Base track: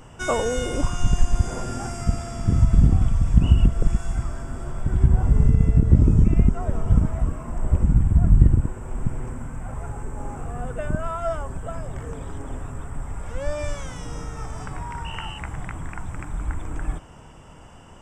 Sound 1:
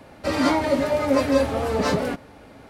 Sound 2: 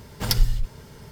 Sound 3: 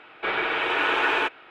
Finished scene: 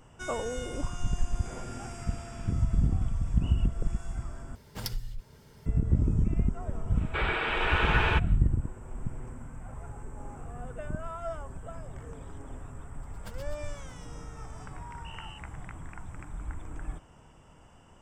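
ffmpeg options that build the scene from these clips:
-filter_complex "[3:a]asplit=2[a][b];[2:a]asplit=2[c][d];[0:a]volume=-10dB[e];[a]acompressor=threshold=-39dB:ratio=6:attack=3.2:release=140:knee=1:detection=peak[f];[c]acompressor=threshold=-20dB:ratio=2.5:attack=13:release=401:knee=6:detection=rms[g];[d]aeval=exprs='val(0)*pow(10,-34*(0.5-0.5*cos(2*PI*8*n/s))/20)':c=same[h];[e]asplit=2[i][j];[i]atrim=end=4.554[k];[g]atrim=end=1.11,asetpts=PTS-STARTPTS,volume=-10dB[l];[j]atrim=start=5.656[m];[f]atrim=end=1.5,asetpts=PTS-STARTPTS,volume=-14.5dB,afade=t=in:d=0.004:c=hsin,afade=t=out:st=1.496:d=0.004:c=hsin,adelay=1230[n];[b]atrim=end=1.5,asetpts=PTS-STARTPTS,volume=-4.5dB,afade=t=in:d=0.1,afade=t=out:st=1.4:d=0.1,adelay=6910[o];[h]atrim=end=1.11,asetpts=PTS-STARTPTS,volume=-12.5dB,afade=t=in:d=0.004:c=hsin,afade=t=out:st=1.106:d=0.004:c=hsin,adelay=13030[p];[k][l]acrossfade=d=0.004:c1=hsin:c2=hsin[q];[q][m]acrossfade=d=0.004:c1=hsin:c2=hsin[r];[r][n][o][p]amix=inputs=4:normalize=0"

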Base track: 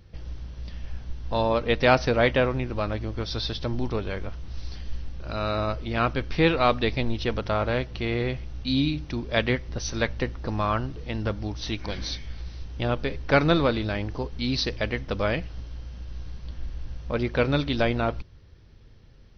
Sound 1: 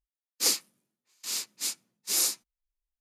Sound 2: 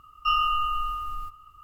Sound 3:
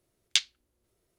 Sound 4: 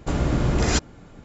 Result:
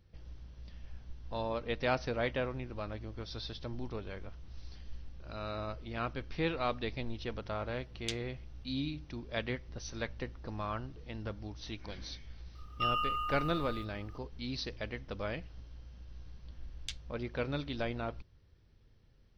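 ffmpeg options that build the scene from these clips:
-filter_complex "[3:a]asplit=2[a][b];[0:a]volume=-12.5dB[c];[a]atrim=end=1.18,asetpts=PTS-STARTPTS,volume=-15dB,afade=t=in:d=0.004:c=hsin,afade=t=out:st=1.176:d=0.004:c=hsin,adelay=7730[d];[2:a]atrim=end=1.63,asetpts=PTS-STARTPTS,volume=-9dB,afade=t=in:d=0.004:c=hsin,afade=t=out:st=1.626:d=0.004:c=hsin,adelay=12550[e];[b]atrim=end=1.18,asetpts=PTS-STARTPTS,volume=-18dB,afade=t=in:d=0.004:c=hsin,afade=t=out:st=1.176:d=0.004:c=hsin,adelay=16530[f];[c][d][e][f]amix=inputs=4:normalize=0"

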